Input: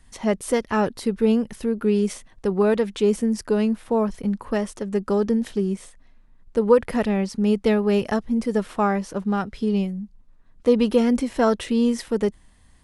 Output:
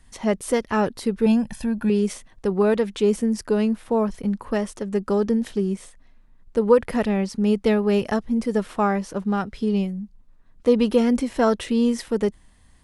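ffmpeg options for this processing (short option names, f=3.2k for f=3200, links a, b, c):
-filter_complex "[0:a]asettb=1/sr,asplit=3[a][b][c];[a]atrim=end=1.264[d];[b]atrim=start=1.26:end=1.9,asetpts=PTS-STARTPTS,afade=t=in:d=0.004:c=qsin,afade=t=out:st=0.636:d=0.004:c=qsin,aecho=1:1:1.2:0.81,atrim=end_sample=28224[e];[c]atrim=start=1.896[f];[d][e]acrossfade=d=0.004:c1=hsin:c2=qsin[g];[g][f]acrossfade=d=0.004:c1=qsin:c2=hsin"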